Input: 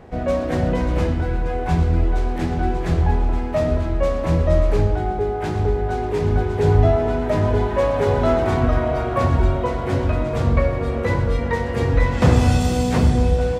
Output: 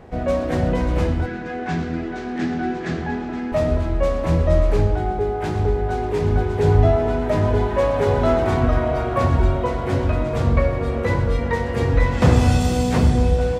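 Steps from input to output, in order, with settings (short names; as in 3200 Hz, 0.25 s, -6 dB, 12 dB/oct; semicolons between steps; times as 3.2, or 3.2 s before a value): 1.26–3.52 speaker cabinet 190–7000 Hz, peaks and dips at 230 Hz +8 dB, 540 Hz -7 dB, 940 Hz -7 dB, 1700 Hz +6 dB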